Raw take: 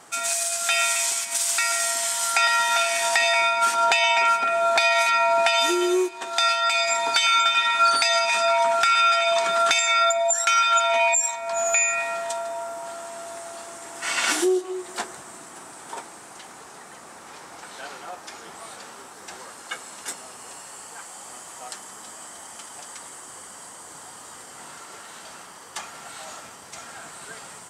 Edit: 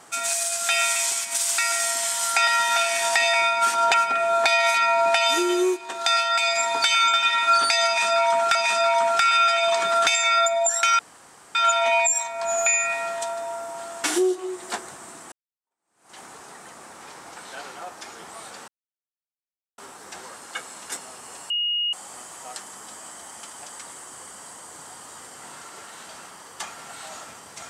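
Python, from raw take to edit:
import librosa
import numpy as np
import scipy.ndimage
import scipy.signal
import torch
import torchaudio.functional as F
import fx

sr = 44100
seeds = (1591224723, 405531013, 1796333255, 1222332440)

y = fx.edit(x, sr, fx.cut(start_s=3.94, length_s=0.32),
    fx.repeat(start_s=8.19, length_s=0.68, count=2),
    fx.insert_room_tone(at_s=10.63, length_s=0.56),
    fx.cut(start_s=13.12, length_s=1.18),
    fx.fade_in_span(start_s=15.58, length_s=0.85, curve='exp'),
    fx.insert_silence(at_s=18.94, length_s=1.1),
    fx.bleep(start_s=20.66, length_s=0.43, hz=2870.0, db=-21.5), tone=tone)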